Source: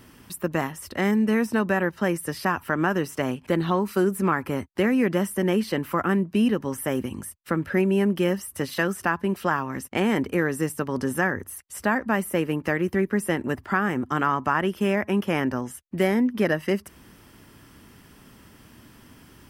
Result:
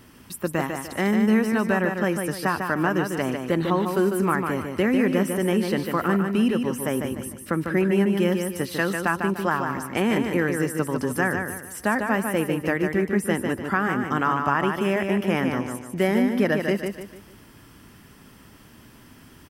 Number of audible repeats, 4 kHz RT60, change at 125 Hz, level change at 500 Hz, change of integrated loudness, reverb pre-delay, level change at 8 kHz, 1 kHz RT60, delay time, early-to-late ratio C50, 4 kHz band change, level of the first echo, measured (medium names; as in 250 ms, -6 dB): 4, no reverb, +1.0 dB, +1.0 dB, +1.0 dB, no reverb, +1.0 dB, no reverb, 149 ms, no reverb, +1.0 dB, -5.5 dB